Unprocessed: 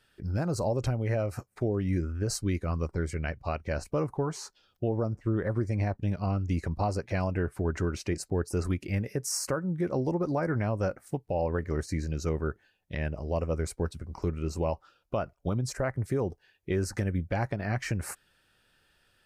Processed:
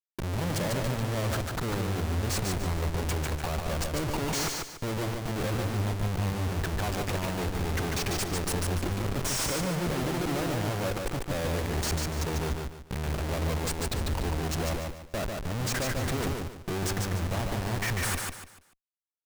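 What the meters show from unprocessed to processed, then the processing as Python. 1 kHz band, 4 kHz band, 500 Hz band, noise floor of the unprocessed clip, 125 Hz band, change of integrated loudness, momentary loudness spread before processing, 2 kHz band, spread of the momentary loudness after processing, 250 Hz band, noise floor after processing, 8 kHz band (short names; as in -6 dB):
+3.0 dB, +10.0 dB, -2.0 dB, -71 dBFS, 0.0 dB, +1.0 dB, 6 LU, +5.0 dB, 4 LU, -1.0 dB, -53 dBFS, +5.5 dB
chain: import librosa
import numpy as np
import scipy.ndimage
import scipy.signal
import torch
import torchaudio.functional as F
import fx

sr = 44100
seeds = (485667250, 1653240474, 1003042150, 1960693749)

y = fx.block_float(x, sr, bits=3)
y = fx.schmitt(y, sr, flips_db=-44.0)
y = fx.echo_feedback(y, sr, ms=146, feedback_pct=32, wet_db=-3.5)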